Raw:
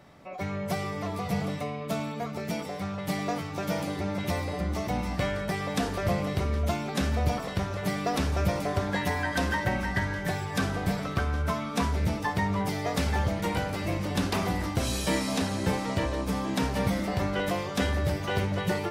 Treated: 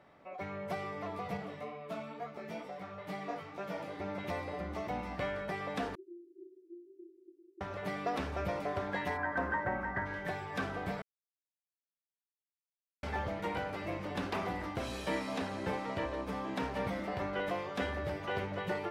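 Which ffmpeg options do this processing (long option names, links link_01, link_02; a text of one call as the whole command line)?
ffmpeg -i in.wav -filter_complex "[0:a]asettb=1/sr,asplit=3[link_01][link_02][link_03];[link_01]atrim=end=1.374[link_04];[link_02]atrim=start=1.37:end=4,asetpts=PTS-STARTPTS,afade=type=in:duration=0.004:curve=qsin,afade=type=out:start_time=2.626:duration=0.004:curve=qsin,flanger=delay=15:depth=3.8:speed=2.2[link_05];[link_03]atrim=start=3.996[link_06];[link_04][link_05]acrossfade=duration=0.004:curve1=hsin:curve2=qsin[link_07];[link_07][link_06]acrossfade=duration=0.004:curve1=qsin:curve2=hsin,asettb=1/sr,asplit=3[link_08][link_09][link_10];[link_08]atrim=end=5.954[link_11];[link_09]atrim=start=5.95:end=7.61,asetpts=PTS-STARTPTS,afade=type=in:duration=0.004:curve=qsin,afade=type=out:start_time=1.656:duration=0.004:curve=qsin,asuperpass=centerf=350:order=8:qfactor=6.4[link_12];[link_10]atrim=start=7.606[link_13];[link_11][link_12]acrossfade=duration=0.004:curve1=hsin:curve2=qsin[link_14];[link_14][link_13]acrossfade=duration=0.004:curve1=qsin:curve2=hsin,asplit=3[link_15][link_16][link_17];[link_15]afade=type=out:start_time=9.16:duration=0.02[link_18];[link_16]highshelf=frequency=2200:width_type=q:width=1.5:gain=-12.5,afade=type=in:start_time=9.16:duration=0.02,afade=type=out:start_time=10.05:duration=0.02[link_19];[link_17]afade=type=in:start_time=10.05:duration=0.02[link_20];[link_18][link_19][link_20]amix=inputs=3:normalize=0,asplit=3[link_21][link_22][link_23];[link_21]atrim=end=11.02,asetpts=PTS-STARTPTS,afade=type=out:start_time=11.016:duration=0.004:curve=hsin[link_24];[link_22]atrim=start=11.02:end=13.03,asetpts=PTS-STARTPTS,volume=0[link_25];[link_23]atrim=start=13.03,asetpts=PTS-STARTPTS,afade=type=in:duration=0.004:curve=hsin[link_26];[link_24][link_25][link_26]concat=n=3:v=0:a=1,bass=frequency=250:gain=-9,treble=frequency=4000:gain=-14,volume=-5dB" out.wav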